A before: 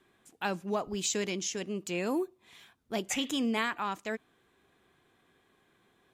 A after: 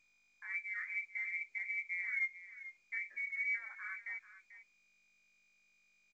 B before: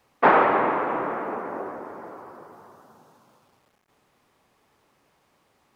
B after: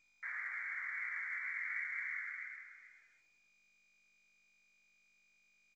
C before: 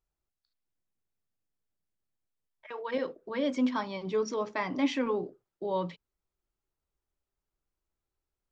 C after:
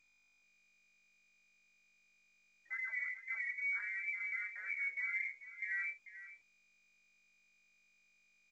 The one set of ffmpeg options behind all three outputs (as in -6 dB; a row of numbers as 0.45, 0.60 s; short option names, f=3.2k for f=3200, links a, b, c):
-filter_complex "[0:a]afftdn=nr=15:nf=-43,agate=range=-33dB:threshold=-47dB:ratio=3:detection=peak,areverse,acompressor=threshold=-33dB:ratio=6,areverse,alimiter=level_in=9dB:limit=-24dB:level=0:latency=1:release=37,volume=-9dB,flanger=delay=17:depth=5.6:speed=0.73,aeval=exprs='val(0)+0.0001*(sin(2*PI*50*n/s)+sin(2*PI*2*50*n/s)/2+sin(2*PI*3*50*n/s)/3+sin(2*PI*4*50*n/s)/4+sin(2*PI*5*50*n/s)/5)':c=same,acrossover=split=100|970[a][b][c];[b]aecho=1:1:441:0.2[d];[c]acrusher=bits=2:mix=0:aa=0.5[e];[a][d][e]amix=inputs=3:normalize=0,lowpass=f=2.1k:t=q:w=0.5098,lowpass=f=2.1k:t=q:w=0.6013,lowpass=f=2.1k:t=q:w=0.9,lowpass=f=2.1k:t=q:w=2.563,afreqshift=-2500,volume=4.5dB" -ar 16000 -c:a pcm_mulaw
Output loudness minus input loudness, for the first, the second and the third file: -5.5, -17.0, -6.5 LU